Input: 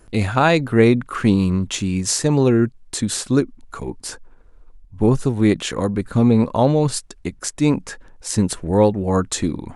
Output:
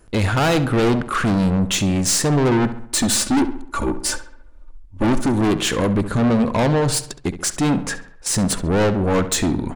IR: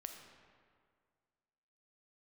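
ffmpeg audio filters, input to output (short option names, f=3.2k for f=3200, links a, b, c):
-filter_complex "[0:a]agate=range=-9dB:threshold=-36dB:ratio=16:detection=peak,asettb=1/sr,asplit=3[a][b][c];[a]atrim=end=2.514[d];[b]atrim=start=2.51:end=5.42,asetpts=PTS-STARTPTS,afade=t=in:d=0.004:c=qsin,afade=t=out:st=2.906:d=0.004:c=qsin,aecho=1:1:3.4:0.94,atrim=end_sample=128331[e];[c]atrim=start=5.416[f];[d][e]acrossfade=d=0.004:c1=hsin:c2=qsin[g];[g][f]acrossfade=d=0.004:c1=qsin:c2=hsin,aeval=exprs='(tanh(14.1*val(0)+0.2)-tanh(0.2))/14.1':c=same,asplit=2[h][i];[i]adelay=68,lowpass=f=3.3k:p=1,volume=-12dB,asplit=2[j][k];[k]adelay=68,lowpass=f=3.3k:p=1,volume=0.51,asplit=2[l][m];[m]adelay=68,lowpass=f=3.3k:p=1,volume=0.51,asplit=2[n][o];[o]adelay=68,lowpass=f=3.3k:p=1,volume=0.51,asplit=2[p][q];[q]adelay=68,lowpass=f=3.3k:p=1,volume=0.51[r];[h][j][l][n][p][r]amix=inputs=6:normalize=0,volume=8dB"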